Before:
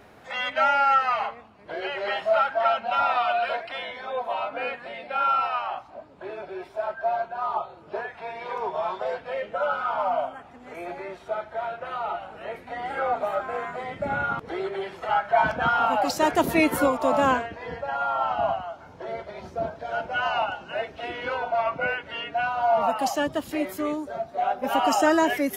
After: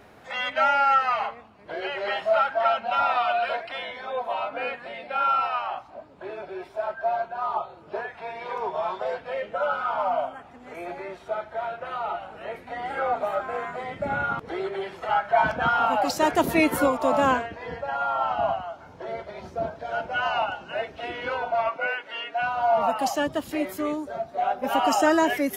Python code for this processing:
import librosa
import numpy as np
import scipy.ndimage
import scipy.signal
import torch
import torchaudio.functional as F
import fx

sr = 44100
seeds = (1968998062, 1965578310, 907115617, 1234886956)

y = fx.bessel_highpass(x, sr, hz=460.0, order=2, at=(21.69, 22.42))